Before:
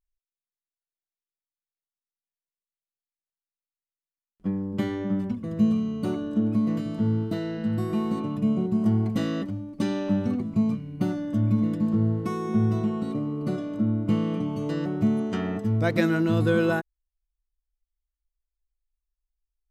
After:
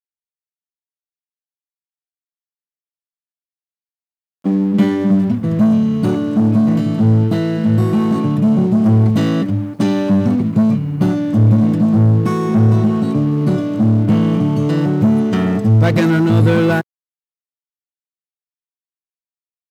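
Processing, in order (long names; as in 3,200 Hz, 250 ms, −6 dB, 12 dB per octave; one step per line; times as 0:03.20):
leveller curve on the samples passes 3
high-pass filter sweep 3,100 Hz → 120 Hz, 0:01.75–0:05.31
bit reduction 10 bits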